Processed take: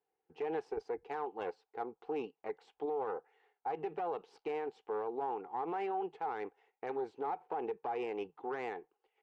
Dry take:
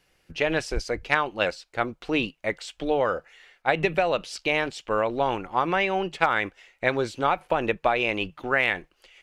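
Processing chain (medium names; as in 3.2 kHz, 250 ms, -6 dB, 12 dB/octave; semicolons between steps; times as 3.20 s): gate -52 dBFS, range -8 dB; valve stage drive 19 dB, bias 0.8; two resonant band-passes 590 Hz, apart 0.85 oct; peak limiter -33.5 dBFS, peak gain reduction 11 dB; trim +4.5 dB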